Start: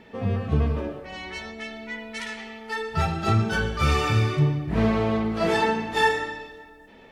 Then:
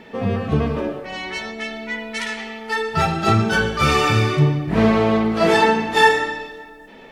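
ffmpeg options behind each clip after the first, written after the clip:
-af "equalizer=f=69:w=1.2:g=-11.5,volume=7.5dB"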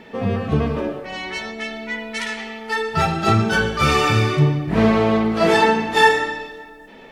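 -af anull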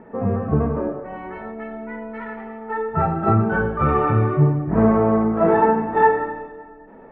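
-af "lowpass=f=1.4k:w=0.5412,lowpass=f=1.4k:w=1.3066"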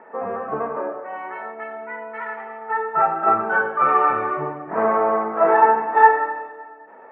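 -af "highpass=730,lowpass=2.3k,volume=6dB"

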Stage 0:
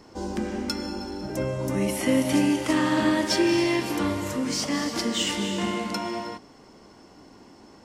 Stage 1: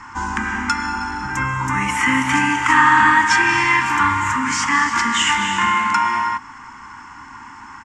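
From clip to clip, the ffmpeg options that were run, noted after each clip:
-filter_complex "[0:a]firequalizer=gain_entry='entry(120,0);entry(170,-10);entry(250,-3);entry(380,-17);entry(610,-26);entry(890,12);entry(1600,14);entry(4200,-9);entry(7100,4);entry(11000,-16)':delay=0.05:min_phase=1,asplit=2[a][b];[b]acompressor=threshold=-30dB:ratio=6,volume=-2dB[c];[a][c]amix=inputs=2:normalize=0,volume=4dB"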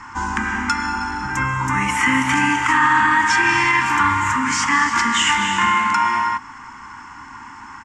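-af "alimiter=level_in=6dB:limit=-1dB:release=50:level=0:latency=1,volume=-5.5dB"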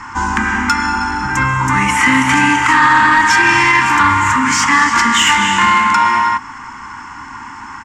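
-af "acontrast=75"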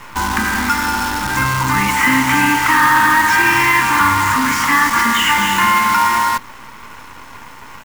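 -filter_complex "[0:a]acrossover=split=150|3400[a][b][c];[c]asoftclip=type=tanh:threshold=-24.5dB[d];[a][b][d]amix=inputs=3:normalize=0,acrusher=bits=4:dc=4:mix=0:aa=0.000001,volume=-2dB"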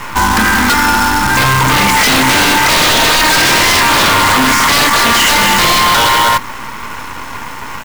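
-af "aeval=exprs='0.891*sin(PI/2*4.47*val(0)/0.891)':c=same,volume=-5.5dB"

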